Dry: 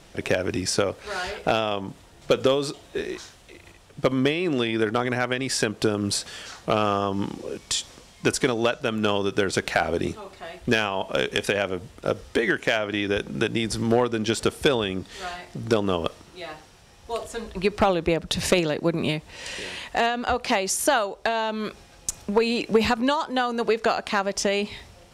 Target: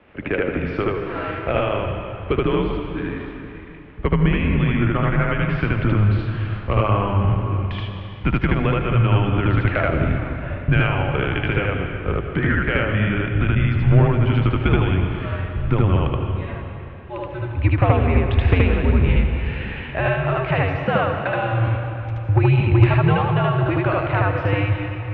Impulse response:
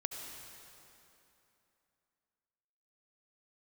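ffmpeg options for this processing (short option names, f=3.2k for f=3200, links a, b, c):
-filter_complex "[0:a]highpass=f=170:t=q:w=0.5412,highpass=f=170:t=q:w=1.307,lowpass=f=2.8k:t=q:w=0.5176,lowpass=f=2.8k:t=q:w=0.7071,lowpass=f=2.8k:t=q:w=1.932,afreqshift=-100,asplit=2[a][b];[1:a]atrim=start_sample=2205,adelay=76[c];[b][c]afir=irnorm=-1:irlink=0,volume=1.5dB[d];[a][d]amix=inputs=2:normalize=0,asubboost=boost=7:cutoff=110"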